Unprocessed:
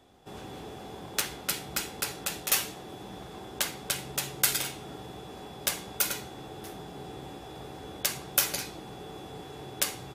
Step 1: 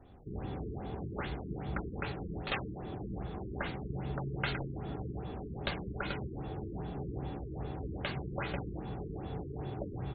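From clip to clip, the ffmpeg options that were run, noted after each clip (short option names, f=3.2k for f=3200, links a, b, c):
-af "aemphasis=mode=reproduction:type=bsi,afftfilt=real='re*lt(b*sr/1024,420*pow(4600/420,0.5+0.5*sin(2*PI*2.5*pts/sr)))':imag='im*lt(b*sr/1024,420*pow(4600/420,0.5+0.5*sin(2*PI*2.5*pts/sr)))':win_size=1024:overlap=0.75,volume=-1.5dB"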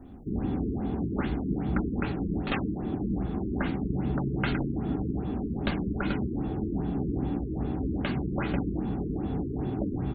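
-af "equalizer=f=125:t=o:w=1:g=-5,equalizer=f=250:t=o:w=1:g=10,equalizer=f=500:t=o:w=1:g=-7,equalizer=f=1k:t=o:w=1:g=-3,equalizer=f=2k:t=o:w=1:g=-4,equalizer=f=4k:t=o:w=1:g=-9,volume=9dB"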